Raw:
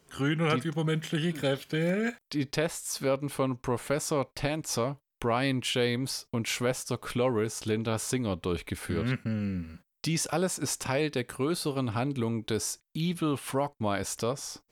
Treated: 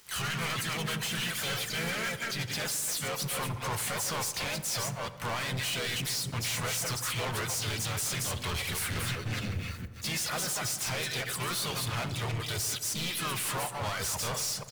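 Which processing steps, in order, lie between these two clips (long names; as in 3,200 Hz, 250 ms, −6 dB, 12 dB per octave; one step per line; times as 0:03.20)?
delay that plays each chunk backwards 154 ms, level −6 dB
reverb reduction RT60 0.63 s
high-pass filter 57 Hz 24 dB per octave
guitar amp tone stack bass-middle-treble 10-0-10
brickwall limiter −31.5 dBFS, peak gain reduction 11.5 dB
leveller curve on the samples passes 5
reversed playback
upward compression, threshold −39 dBFS
reversed playback
pitch-shifted copies added −3 semitones −6 dB, +5 semitones −7 dB, +12 semitones −17 dB
feedback echo with a low-pass in the loop 86 ms, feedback 81%, low-pass 1,800 Hz, level −14.5 dB
on a send at −16 dB: convolution reverb, pre-delay 3 ms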